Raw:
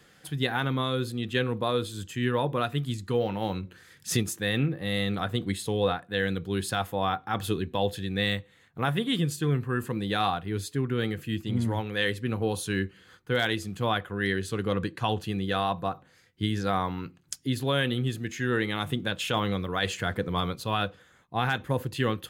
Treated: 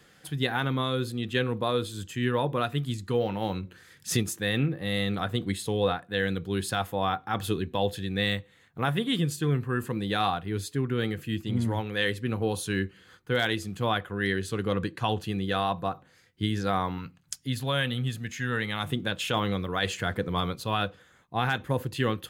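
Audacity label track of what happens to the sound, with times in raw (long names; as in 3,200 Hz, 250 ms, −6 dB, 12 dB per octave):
16.980000	18.840000	parametric band 350 Hz −12.5 dB 0.58 octaves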